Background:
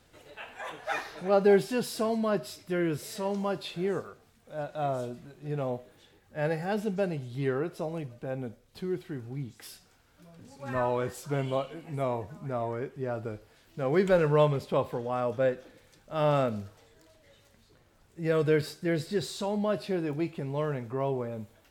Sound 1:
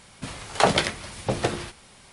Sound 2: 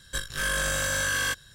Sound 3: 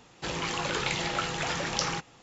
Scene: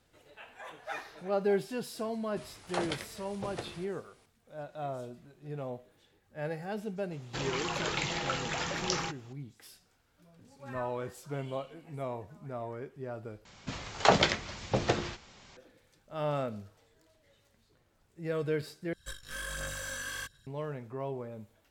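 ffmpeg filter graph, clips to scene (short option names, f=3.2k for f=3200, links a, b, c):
-filter_complex "[1:a]asplit=2[a][b];[0:a]volume=-7dB[c];[b]aresample=16000,aresample=44100[d];[2:a]aphaser=in_gain=1:out_gain=1:delay=4.2:decay=0.43:speed=1.4:type=sinusoidal[e];[c]asplit=3[f][g][h];[f]atrim=end=13.454[i];[d]atrim=end=2.12,asetpts=PTS-STARTPTS,volume=-3.5dB[j];[g]atrim=start=15.566:end=18.934[k];[e]atrim=end=1.54,asetpts=PTS-STARTPTS,volume=-13dB[l];[h]atrim=start=20.466[m];[a]atrim=end=2.12,asetpts=PTS-STARTPTS,volume=-15.5dB,afade=t=in:d=0.004:c=hsin,afade=t=out:st=2.116:d=0.004:c=hsin,adelay=2140[n];[3:a]atrim=end=2.22,asetpts=PTS-STARTPTS,volume=-3.5dB,afade=t=in:d=0.004:c=hsin,afade=t=out:st=2.216:d=0.004:c=hsin,adelay=7110[o];[i][j]acrossfade=d=0.004:c1=hsin:c2=hsin[p];[p][k]acrossfade=d=0.004:c1=hsin:c2=hsin[q];[q][l]acrossfade=d=0.004:c1=hsin:c2=hsin[r];[r][m]acrossfade=d=0.004:c1=hsin:c2=hsin[s];[s][n][o]amix=inputs=3:normalize=0"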